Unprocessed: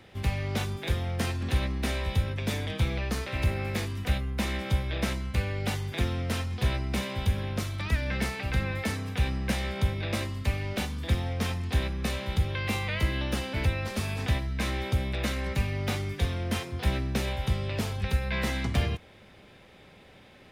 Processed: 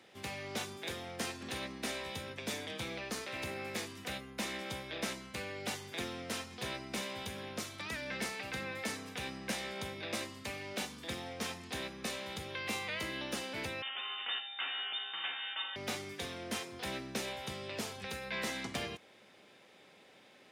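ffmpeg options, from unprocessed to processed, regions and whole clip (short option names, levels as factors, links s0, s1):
-filter_complex "[0:a]asettb=1/sr,asplit=3[s0][s1][s2];[s0]atrim=end=13.824[s3];[s1]atrim=start=13.82:end=15.76,asetpts=PTS-STARTPTS,afade=t=in:d=0.004:c=qsin,afade=t=out:st=1.936:d=0.004:c=qsin,lowshelf=f=510:t=q:w=3:g=-12,aeval=exprs='val(0)+0.00398*sin(2*PI*2900*n/s)':c=same,lowpass=f=3100:t=q:w=0.5098,lowpass=f=3100:t=q:w=0.6013,lowpass=f=3100:t=q:w=0.9,lowpass=f=3100:t=q:w=2.563,afreqshift=-3700[s4];[s2]atrim=start=15.756[s5];[s3][s4]acrossfade=d=0.004:c1=hsin:c2=qsin[s6];[s6][s5]acrossfade=d=0.004:c1=qsin:c2=hsin,highpass=250,equalizer=f=6900:t=o:w=1.3:g=5.5,volume=0.501"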